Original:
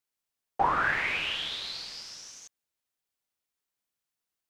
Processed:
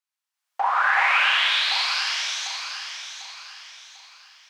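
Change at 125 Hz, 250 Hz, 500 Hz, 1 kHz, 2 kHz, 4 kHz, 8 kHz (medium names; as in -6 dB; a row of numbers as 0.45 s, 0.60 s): under -40 dB, under -20 dB, 0.0 dB, +7.0 dB, +10.0 dB, +12.5 dB, +12.5 dB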